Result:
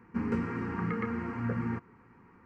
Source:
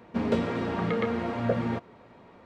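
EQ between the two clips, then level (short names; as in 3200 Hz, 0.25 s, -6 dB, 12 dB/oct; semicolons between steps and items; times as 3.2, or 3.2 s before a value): LPF 3700 Hz 6 dB/oct; fixed phaser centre 1500 Hz, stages 4; -1.5 dB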